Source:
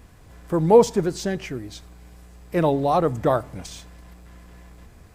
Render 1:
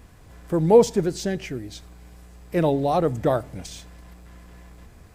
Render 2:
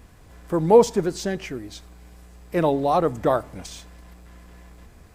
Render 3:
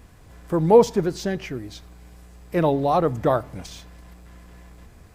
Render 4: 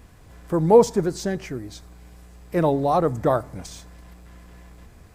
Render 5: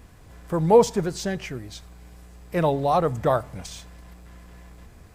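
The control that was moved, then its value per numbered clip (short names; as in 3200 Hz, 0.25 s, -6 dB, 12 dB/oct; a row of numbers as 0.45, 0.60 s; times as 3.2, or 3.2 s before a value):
dynamic EQ, frequency: 1100, 120, 8100, 2900, 310 Hz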